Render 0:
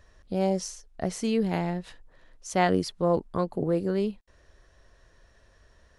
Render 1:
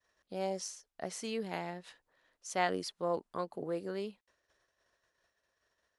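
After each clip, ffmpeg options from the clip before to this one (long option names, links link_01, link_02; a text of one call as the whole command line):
ffmpeg -i in.wav -af "agate=range=-33dB:threshold=-50dB:ratio=3:detection=peak,highpass=frequency=640:poles=1,volume=-5dB" out.wav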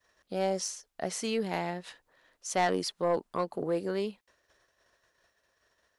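ffmpeg -i in.wav -af "asoftclip=type=tanh:threshold=-25dB,volume=7dB" out.wav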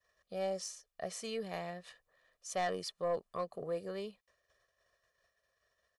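ffmpeg -i in.wav -af "aecho=1:1:1.7:0.62,volume=-9dB" out.wav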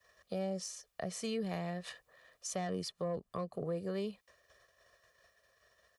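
ffmpeg -i in.wav -filter_complex "[0:a]highpass=42,acrossover=split=280[link_01][link_02];[link_02]acompressor=threshold=-48dB:ratio=8[link_03];[link_01][link_03]amix=inputs=2:normalize=0,volume=9dB" out.wav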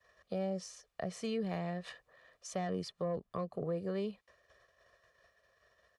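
ffmpeg -i in.wav -af "aemphasis=mode=reproduction:type=50kf,volume=1dB" out.wav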